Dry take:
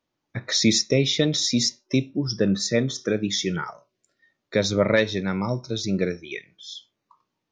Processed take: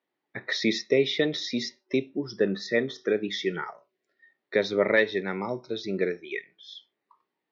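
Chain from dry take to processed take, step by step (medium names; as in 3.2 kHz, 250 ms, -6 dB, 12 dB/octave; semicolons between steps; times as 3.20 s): cabinet simulation 220–4400 Hz, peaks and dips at 400 Hz +8 dB, 790 Hz +5 dB, 1.9 kHz +9 dB; trim -5 dB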